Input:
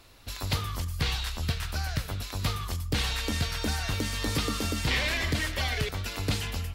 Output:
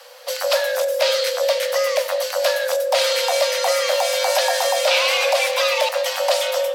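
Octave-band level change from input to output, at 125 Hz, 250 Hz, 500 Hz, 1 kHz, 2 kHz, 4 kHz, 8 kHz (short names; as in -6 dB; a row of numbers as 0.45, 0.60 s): under -40 dB, under -30 dB, +22.5 dB, +14.5 dB, +9.5 dB, +11.0 dB, +11.5 dB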